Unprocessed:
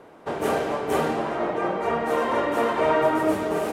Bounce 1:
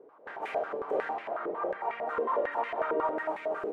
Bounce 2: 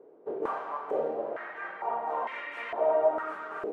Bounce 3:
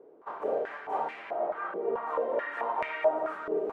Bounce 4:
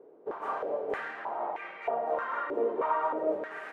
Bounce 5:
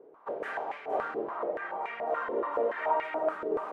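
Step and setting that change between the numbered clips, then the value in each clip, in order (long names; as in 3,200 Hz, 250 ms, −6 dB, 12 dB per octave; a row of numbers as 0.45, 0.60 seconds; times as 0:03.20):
band-pass on a step sequencer, speed: 11, 2.2, 4.6, 3.2, 7 Hertz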